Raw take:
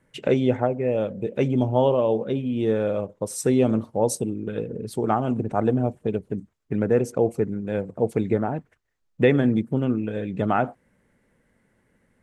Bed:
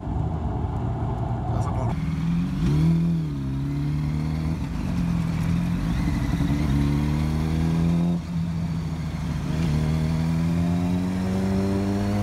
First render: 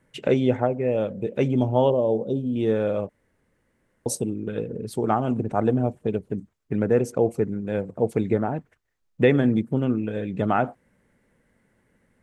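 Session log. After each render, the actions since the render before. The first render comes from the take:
0:01.90–0:02.56: Butterworth band-reject 1,900 Hz, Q 0.52
0:03.09–0:04.06: fill with room tone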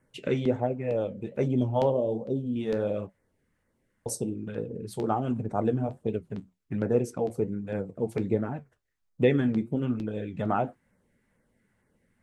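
auto-filter notch saw down 2.2 Hz 260–4,000 Hz
flanger 1.3 Hz, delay 7.3 ms, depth 6.7 ms, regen −64%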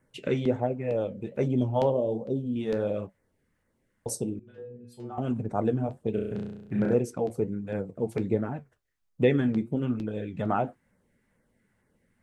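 0:04.39–0:05.18: stiff-string resonator 120 Hz, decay 0.52 s, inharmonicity 0.002
0:06.11–0:06.94: flutter between parallel walls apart 5.8 metres, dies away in 0.93 s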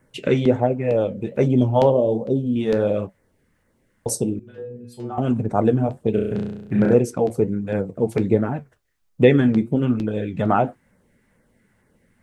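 level +8.5 dB

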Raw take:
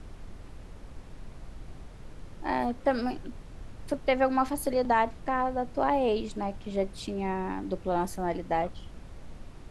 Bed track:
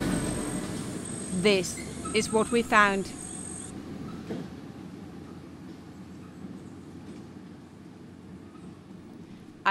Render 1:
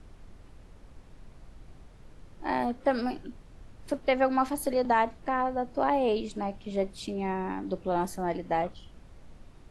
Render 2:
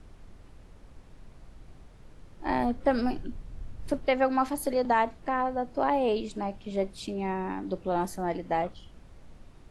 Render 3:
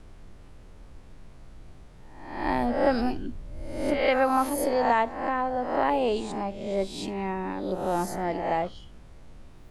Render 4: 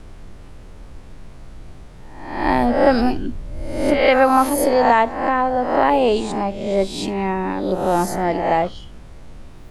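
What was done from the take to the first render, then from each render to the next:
noise reduction from a noise print 6 dB
0:02.46–0:04.05: low-shelf EQ 160 Hz +10.5 dB
peak hold with a rise ahead of every peak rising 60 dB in 0.80 s
level +9 dB; brickwall limiter −3 dBFS, peak gain reduction 1 dB

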